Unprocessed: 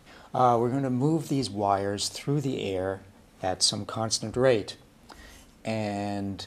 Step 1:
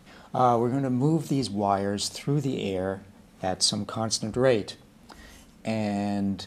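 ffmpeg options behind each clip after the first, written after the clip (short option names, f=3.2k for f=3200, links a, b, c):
-af "equalizer=f=190:t=o:w=0.39:g=8.5"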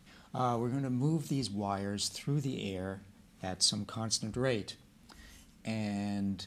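-af "equalizer=f=610:t=o:w=2.2:g=-8,volume=-4.5dB"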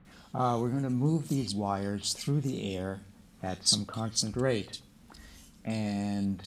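-filter_complex "[0:a]acrossover=split=2400[a][b];[b]adelay=50[c];[a][c]amix=inputs=2:normalize=0,volume=3.5dB"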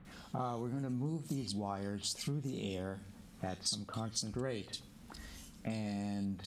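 -af "acompressor=threshold=-37dB:ratio=4,volume=1dB"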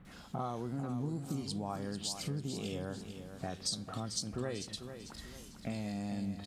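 -af "aecho=1:1:445|890|1335|1780:0.335|0.127|0.0484|0.0184"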